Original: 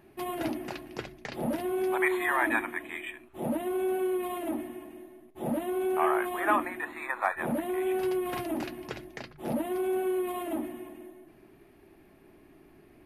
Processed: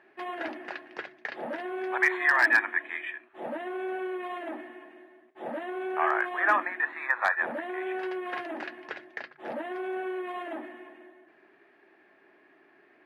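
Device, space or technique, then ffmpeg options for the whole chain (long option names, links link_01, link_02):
megaphone: -af "highpass=460,lowpass=3300,equalizer=frequency=1700:width_type=o:width=0.44:gain=10,asoftclip=type=hard:threshold=-14dB"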